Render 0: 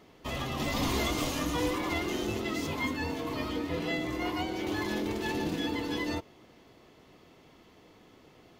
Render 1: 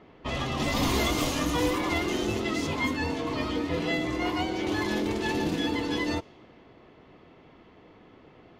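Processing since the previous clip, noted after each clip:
low-pass that shuts in the quiet parts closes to 2,400 Hz, open at −26.5 dBFS
level +4 dB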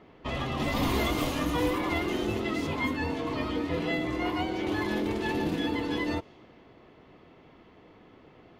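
dynamic equaliser 6,300 Hz, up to −8 dB, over −50 dBFS, Q 0.97
level −1 dB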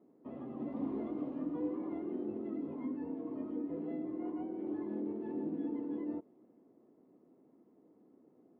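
four-pole ladder band-pass 310 Hz, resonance 40%
level +1 dB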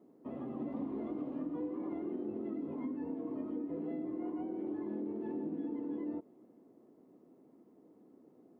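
downward compressor, threshold −38 dBFS, peak gain reduction 7 dB
level +3 dB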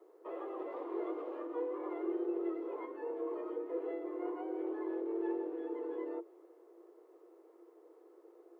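Chebyshev high-pass with heavy ripple 330 Hz, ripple 6 dB
level +9 dB

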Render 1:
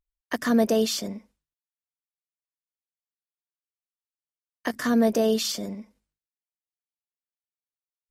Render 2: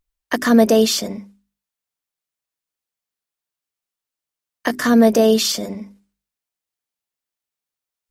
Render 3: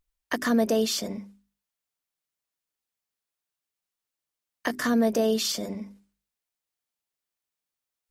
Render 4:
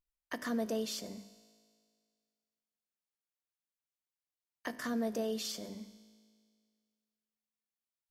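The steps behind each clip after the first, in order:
mains-hum notches 50/100/150/200/250/300/350/400 Hz; level +8.5 dB
downward compressor 1.5 to 1, threshold −34 dBFS, peak gain reduction 9.5 dB; level −1.5 dB
tuned comb filter 54 Hz, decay 2 s, harmonics all, mix 60%; level −4.5 dB

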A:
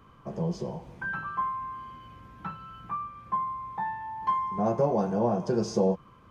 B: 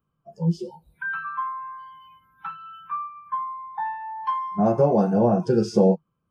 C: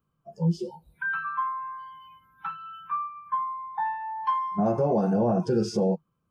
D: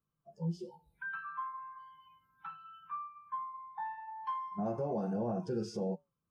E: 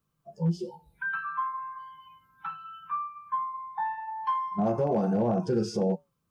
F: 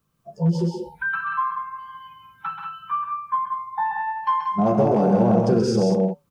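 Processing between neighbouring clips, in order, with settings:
noise reduction from a noise print of the clip's start 29 dB; thirty-one-band graphic EQ 160 Hz +11 dB, 1,000 Hz −6 dB, 2,000 Hz −8 dB, 4,000 Hz −6 dB, 6,300 Hz −8 dB; level +6.5 dB
brickwall limiter −16 dBFS, peak gain reduction 9.5 dB
flanger 0.5 Hz, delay 6 ms, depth 4.3 ms, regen −84%; level −7 dB
hard clipping −28 dBFS, distortion −34 dB; level +9 dB
loudspeakers that aren't time-aligned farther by 45 metres −5 dB, 63 metres −6 dB; level +6.5 dB

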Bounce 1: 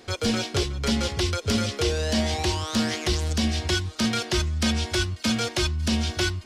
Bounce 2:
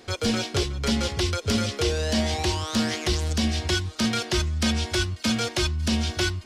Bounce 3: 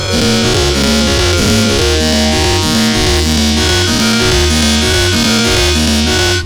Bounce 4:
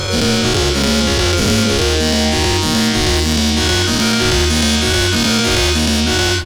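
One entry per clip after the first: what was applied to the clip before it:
no processing that can be heard
every bin's largest magnitude spread in time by 240 ms; gain into a clipping stage and back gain 13.5 dB; level +8.5 dB
far-end echo of a speakerphone 190 ms, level −10 dB; level −3.5 dB

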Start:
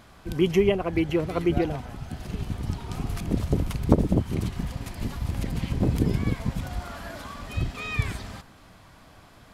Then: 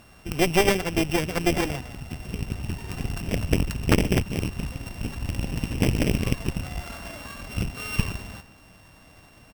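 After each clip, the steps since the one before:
samples sorted by size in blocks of 16 samples
single-tap delay 148 ms −21 dB
harmonic generator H 5 −18 dB, 6 −7 dB, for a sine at −4 dBFS
level −4.5 dB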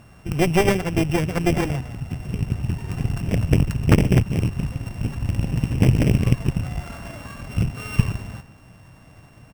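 graphic EQ with 10 bands 125 Hz +9 dB, 4,000 Hz −6 dB, 16,000 Hz −6 dB
level +1.5 dB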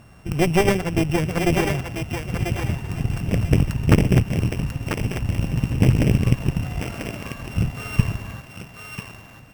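feedback echo with a high-pass in the loop 992 ms, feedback 28%, high-pass 660 Hz, level −3.5 dB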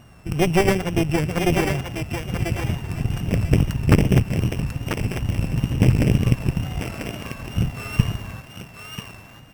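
tape wow and flutter 48 cents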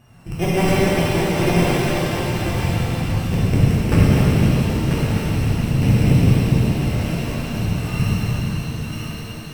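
reverb with rising layers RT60 3.9 s, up +7 semitones, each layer −8 dB, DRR −9 dB
level −7 dB

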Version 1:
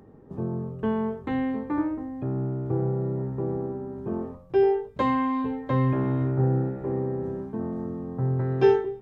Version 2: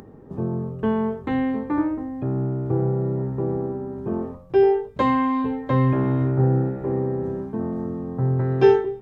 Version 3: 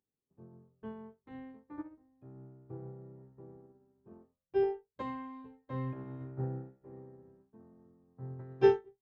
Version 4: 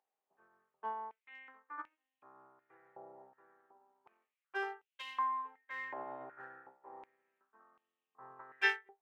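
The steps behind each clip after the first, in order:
upward compression, threshold −44 dBFS; level +4 dB
expander for the loud parts 2.5 to 1, over −39 dBFS; level −7 dB
adaptive Wiener filter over 9 samples; high-pass on a step sequencer 2.7 Hz 750–2,800 Hz; level +5.5 dB

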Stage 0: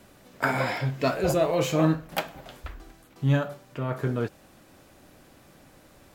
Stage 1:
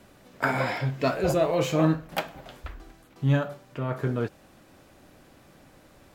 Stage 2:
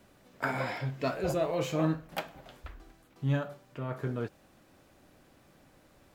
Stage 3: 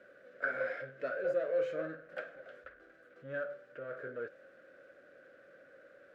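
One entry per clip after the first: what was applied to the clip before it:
high-shelf EQ 6,100 Hz −4.5 dB
bit-depth reduction 12 bits, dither none; level −6.5 dB
power curve on the samples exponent 0.7; pair of resonant band-passes 900 Hz, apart 1.5 octaves

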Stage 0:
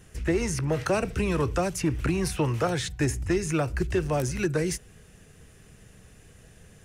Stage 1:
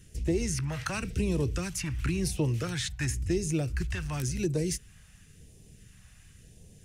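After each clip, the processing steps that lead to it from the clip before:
all-pass phaser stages 2, 0.94 Hz, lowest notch 380–1,400 Hz
level −1.5 dB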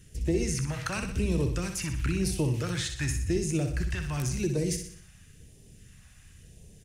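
repeating echo 62 ms, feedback 49%, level −7.5 dB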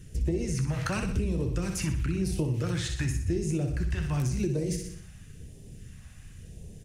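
tilt shelving filter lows +3.5 dB, about 900 Hz
downward compressor, threshold −29 dBFS, peak gain reduction 10 dB
flanger 1.9 Hz, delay 5.7 ms, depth 9.3 ms, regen −66%
level +8 dB

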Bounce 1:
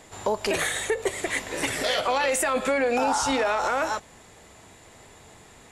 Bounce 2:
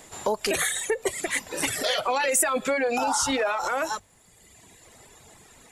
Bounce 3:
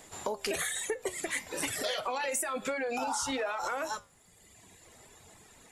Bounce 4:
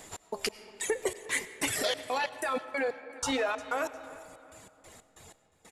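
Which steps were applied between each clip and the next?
reverb reduction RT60 1.4 s; high-shelf EQ 7,500 Hz +10 dB; mains-hum notches 50/100 Hz
downward compressor, threshold −25 dBFS, peak gain reduction 7.5 dB; flanger 1.1 Hz, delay 9.2 ms, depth 3.8 ms, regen +77%
gate pattern "x.x..xx.x.xx.x." 93 BPM −60 dB; repeating echo 354 ms, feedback 35%, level −19.5 dB; comb and all-pass reverb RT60 3 s, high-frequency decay 0.45×, pre-delay 55 ms, DRR 13.5 dB; level +3.5 dB

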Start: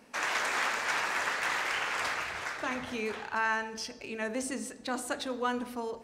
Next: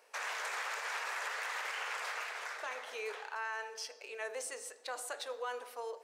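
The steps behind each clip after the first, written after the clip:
Chebyshev high-pass filter 440 Hz, order 4
high-shelf EQ 8,300 Hz +4.5 dB
brickwall limiter −25 dBFS, peak gain reduction 8 dB
level −4.5 dB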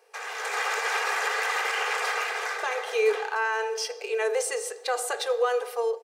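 low shelf with overshoot 320 Hz −9.5 dB, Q 3
comb filter 2.5 ms, depth 54%
automatic gain control gain up to 10 dB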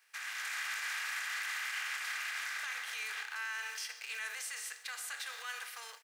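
compressing power law on the bin magnitudes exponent 0.62
brickwall limiter −23 dBFS, peak gain reduction 12 dB
high-pass with resonance 1,700 Hz, resonance Q 2
level −8.5 dB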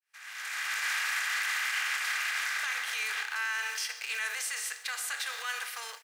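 fade in at the beginning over 0.88 s
level +7 dB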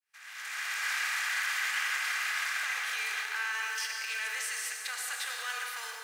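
convolution reverb RT60 2.8 s, pre-delay 82 ms, DRR 2 dB
level −2.5 dB

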